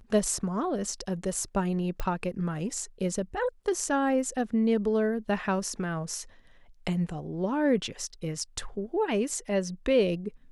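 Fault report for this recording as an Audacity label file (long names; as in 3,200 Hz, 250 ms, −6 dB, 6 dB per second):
2.000000	2.000000	click −19 dBFS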